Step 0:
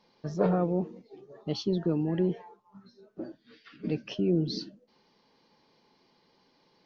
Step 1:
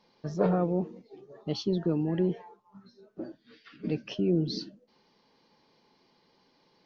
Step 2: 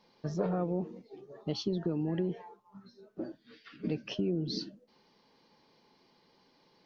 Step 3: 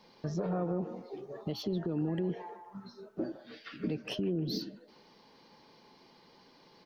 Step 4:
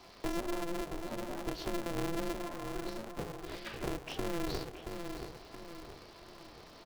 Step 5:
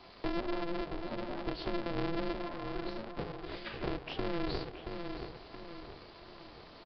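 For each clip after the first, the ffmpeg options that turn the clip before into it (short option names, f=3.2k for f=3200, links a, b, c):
-af anull
-af "acompressor=threshold=-28dB:ratio=6"
-filter_complex "[0:a]acrossover=split=560|2000[a][b][c];[b]aecho=1:1:155|310|465|620:0.501|0.17|0.0579|0.0197[d];[c]asoftclip=type=tanh:threshold=-38dB[e];[a][d][e]amix=inputs=3:normalize=0,alimiter=level_in=6.5dB:limit=-24dB:level=0:latency=1:release=331,volume=-6.5dB,volume=6dB"
-filter_complex "[0:a]acrossover=split=160[a][b];[b]acompressor=threshold=-46dB:ratio=6[c];[a][c]amix=inputs=2:normalize=0,asplit=2[d][e];[e]adelay=675,lowpass=f=1.7k:p=1,volume=-6dB,asplit=2[f][g];[g]adelay=675,lowpass=f=1.7k:p=1,volume=0.44,asplit=2[h][i];[i]adelay=675,lowpass=f=1.7k:p=1,volume=0.44,asplit=2[j][k];[k]adelay=675,lowpass=f=1.7k:p=1,volume=0.44,asplit=2[l][m];[m]adelay=675,lowpass=f=1.7k:p=1,volume=0.44[n];[d][f][h][j][l][n]amix=inputs=6:normalize=0,aeval=exprs='val(0)*sgn(sin(2*PI*170*n/s))':c=same,volume=5dB"
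-af "aresample=11025,aresample=44100,volume=1dB"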